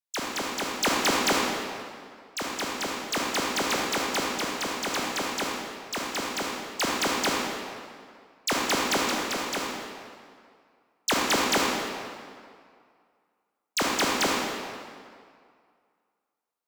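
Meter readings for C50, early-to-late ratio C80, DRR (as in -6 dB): -1.5 dB, 0.5 dB, -2.5 dB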